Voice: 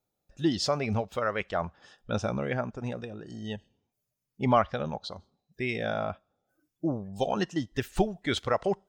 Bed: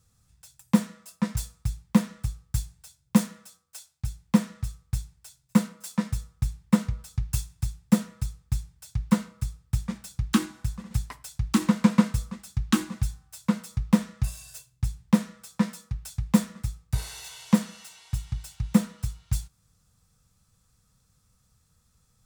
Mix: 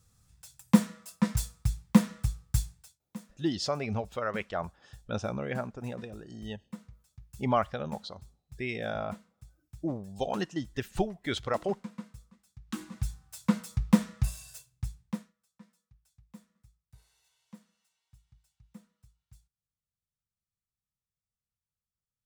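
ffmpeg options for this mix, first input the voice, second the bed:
-filter_complex "[0:a]adelay=3000,volume=-3.5dB[a];[1:a]volume=21dB,afade=t=out:st=2.69:d=0.31:silence=0.0749894,afade=t=in:st=12.65:d=0.64:silence=0.0891251,afade=t=out:st=14.28:d=1.05:silence=0.0354813[b];[a][b]amix=inputs=2:normalize=0"

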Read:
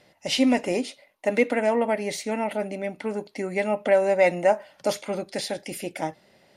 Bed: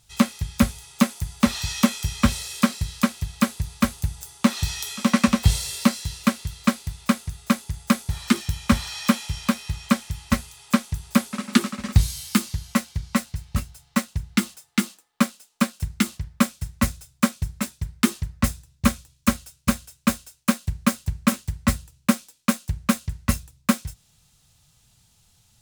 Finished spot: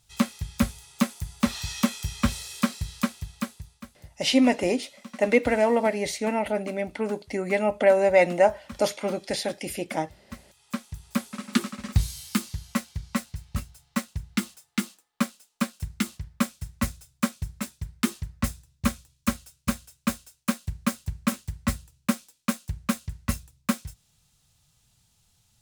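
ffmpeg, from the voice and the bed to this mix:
-filter_complex "[0:a]adelay=3950,volume=1dB[a];[1:a]volume=12.5dB,afade=t=out:st=3:d=0.82:silence=0.125893,afade=t=in:st=10.25:d=1.29:silence=0.133352[b];[a][b]amix=inputs=2:normalize=0"

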